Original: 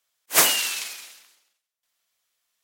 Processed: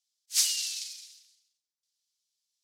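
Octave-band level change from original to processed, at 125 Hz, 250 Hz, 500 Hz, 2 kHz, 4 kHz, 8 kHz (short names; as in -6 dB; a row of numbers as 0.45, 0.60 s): under -40 dB, under -40 dB, under -40 dB, -18.0 dB, -6.0 dB, -5.5 dB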